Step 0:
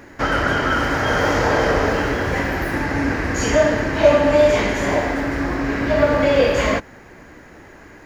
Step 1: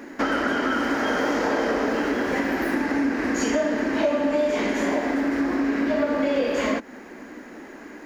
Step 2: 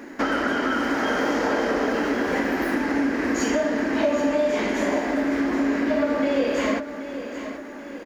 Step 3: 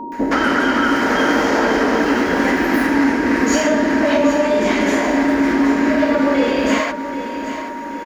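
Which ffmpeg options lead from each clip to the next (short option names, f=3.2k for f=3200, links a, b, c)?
-af "lowshelf=f=170:t=q:w=3:g=-12,acompressor=threshold=-21dB:ratio=4"
-af "aecho=1:1:778|1556|2334|3112|3890:0.266|0.133|0.0665|0.0333|0.0166"
-filter_complex "[0:a]acrossover=split=600[a][b];[b]adelay=120[c];[a][c]amix=inputs=2:normalize=0,aeval=exprs='val(0)+0.0158*sin(2*PI*940*n/s)':c=same,volume=8dB"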